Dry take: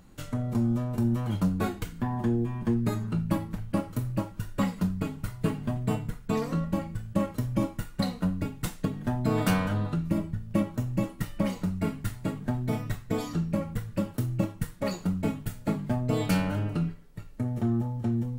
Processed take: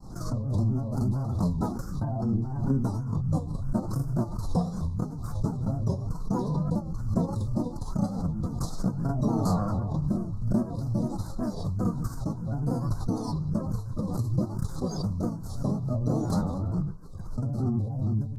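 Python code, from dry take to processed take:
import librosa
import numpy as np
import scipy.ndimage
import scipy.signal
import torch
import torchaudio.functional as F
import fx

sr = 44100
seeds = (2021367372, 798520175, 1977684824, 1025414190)

y = scipy.signal.sosfilt(scipy.signal.ellip(3, 1.0, 40, [1600.0, 5400.0], 'bandstop', fs=sr, output='sos'), x)
y = fx.high_shelf(y, sr, hz=11000.0, db=-5.0)
y = fx.granulator(y, sr, seeds[0], grain_ms=120.0, per_s=24.0, spray_ms=36.0, spread_st=3)
y = fx.formant_shift(y, sr, semitones=-4)
y = fx.pre_swell(y, sr, db_per_s=59.0)
y = F.gain(torch.from_numpy(y), 3.0).numpy()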